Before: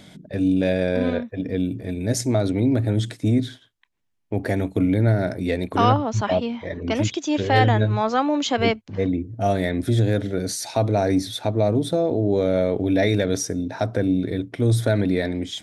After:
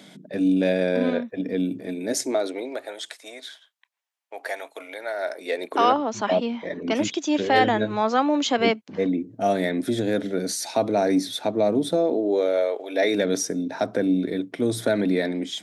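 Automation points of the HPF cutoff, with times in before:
HPF 24 dB/oct
1.77 s 180 Hz
3.02 s 640 Hz
5.07 s 640 Hz
6.37 s 180 Hz
11.91 s 180 Hz
12.85 s 550 Hz
13.23 s 180 Hz

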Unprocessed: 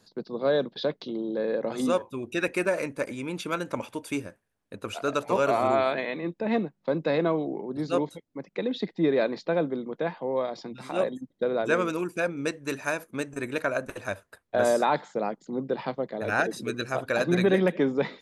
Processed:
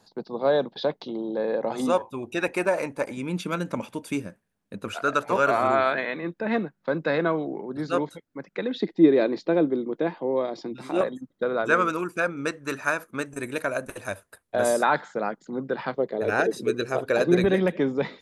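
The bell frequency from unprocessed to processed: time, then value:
bell +9.5 dB 0.65 oct
830 Hz
from 3.17 s 190 Hz
from 4.88 s 1500 Hz
from 8.82 s 330 Hz
from 11.01 s 1300 Hz
from 13.26 s 10000 Hz
from 14.83 s 1500 Hz
from 15.94 s 420 Hz
from 17.44 s 83 Hz

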